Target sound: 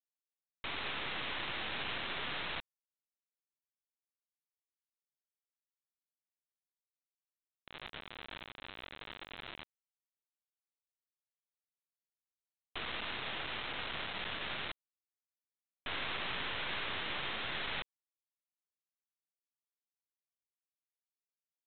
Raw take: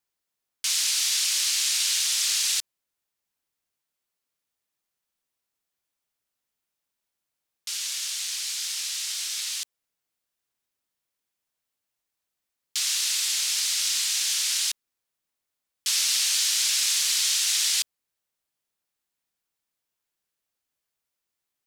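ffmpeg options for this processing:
-af "lowpass=1100,aresample=8000,acrusher=bits=5:dc=4:mix=0:aa=0.000001,aresample=44100,volume=3.55"

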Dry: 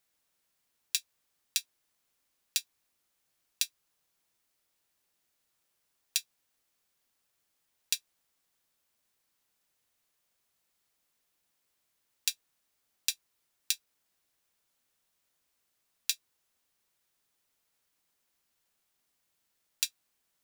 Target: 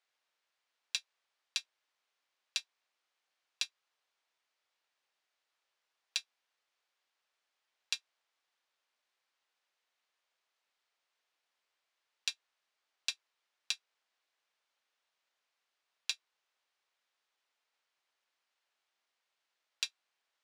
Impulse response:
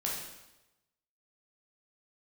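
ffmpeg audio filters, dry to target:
-af "acrusher=bits=3:mode=log:mix=0:aa=0.000001,highpass=590,lowpass=4200"

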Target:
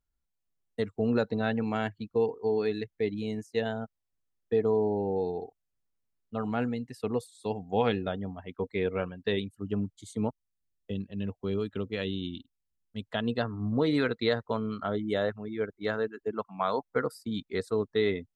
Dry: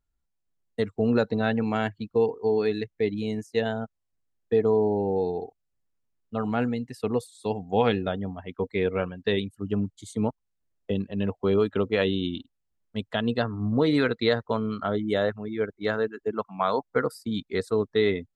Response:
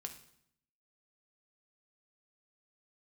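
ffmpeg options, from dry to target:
-filter_complex "[0:a]asplit=3[s0][s1][s2];[s0]afade=t=out:st=10.29:d=0.02[s3];[s1]equalizer=f=840:t=o:w=2.5:g=-9.5,afade=t=in:st=10.29:d=0.02,afade=t=out:st=13.01:d=0.02[s4];[s2]afade=t=in:st=13.01:d=0.02[s5];[s3][s4][s5]amix=inputs=3:normalize=0,volume=0.631"

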